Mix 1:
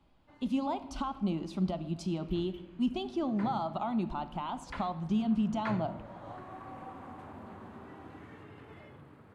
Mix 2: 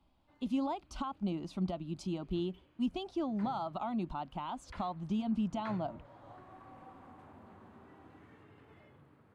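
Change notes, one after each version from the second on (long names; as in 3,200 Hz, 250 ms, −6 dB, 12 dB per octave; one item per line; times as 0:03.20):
background −7.5 dB
reverb: off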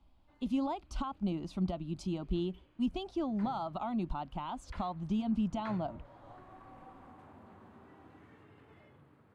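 speech: add low-shelf EQ 72 Hz +11.5 dB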